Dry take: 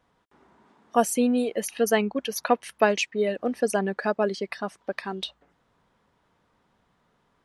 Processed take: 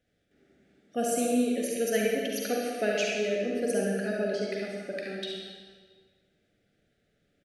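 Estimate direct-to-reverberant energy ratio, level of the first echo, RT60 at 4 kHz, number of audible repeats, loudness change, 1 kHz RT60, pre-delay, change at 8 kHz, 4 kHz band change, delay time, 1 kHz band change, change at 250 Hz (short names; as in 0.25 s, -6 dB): -3.5 dB, -5.5 dB, 1.3 s, 1, -3.5 dB, 1.6 s, 39 ms, -2.5 dB, -2.5 dB, 71 ms, -10.0 dB, -3.0 dB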